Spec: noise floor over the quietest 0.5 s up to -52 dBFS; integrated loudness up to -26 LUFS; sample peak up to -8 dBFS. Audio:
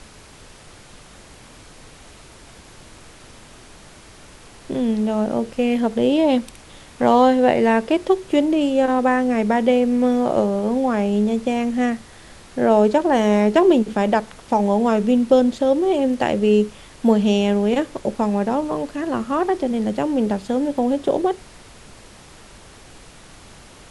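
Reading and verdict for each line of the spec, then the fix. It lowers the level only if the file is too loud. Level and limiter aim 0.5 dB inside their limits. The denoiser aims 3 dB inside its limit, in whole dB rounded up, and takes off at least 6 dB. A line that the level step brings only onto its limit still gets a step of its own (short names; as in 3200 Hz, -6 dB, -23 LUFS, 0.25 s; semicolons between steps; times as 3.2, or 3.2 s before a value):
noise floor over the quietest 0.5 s -44 dBFS: fail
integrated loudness -19.0 LUFS: fail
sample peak -2.0 dBFS: fail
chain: denoiser 6 dB, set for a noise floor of -44 dBFS; gain -7.5 dB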